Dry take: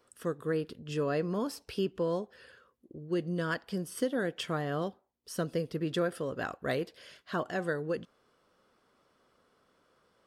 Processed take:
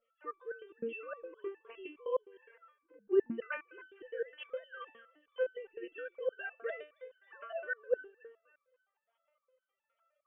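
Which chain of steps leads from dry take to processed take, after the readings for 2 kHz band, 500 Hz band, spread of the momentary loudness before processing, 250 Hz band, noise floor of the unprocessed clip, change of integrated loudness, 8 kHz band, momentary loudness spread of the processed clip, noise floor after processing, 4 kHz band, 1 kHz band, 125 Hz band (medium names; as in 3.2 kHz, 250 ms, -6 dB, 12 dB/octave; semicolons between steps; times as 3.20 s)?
-3.5 dB, -3.5 dB, 6 LU, -11.5 dB, -72 dBFS, -5.5 dB, under -30 dB, 17 LU, under -85 dBFS, -14.5 dB, -9.0 dB, under -25 dB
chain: formants replaced by sine waves; thinning echo 270 ms, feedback 32%, high-pass 690 Hz, level -14.5 dB; resonator arpeggio 9.7 Hz 230–1500 Hz; trim +12 dB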